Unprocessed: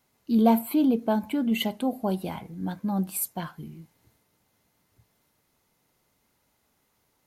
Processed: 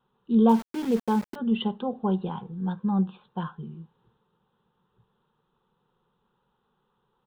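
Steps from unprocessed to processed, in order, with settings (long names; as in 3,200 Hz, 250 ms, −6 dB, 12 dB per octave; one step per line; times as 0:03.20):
downsampling to 8,000 Hz
phaser with its sweep stopped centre 430 Hz, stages 8
0:00.49–0:01.36: centre clipping without the shift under −38 dBFS
level +3.5 dB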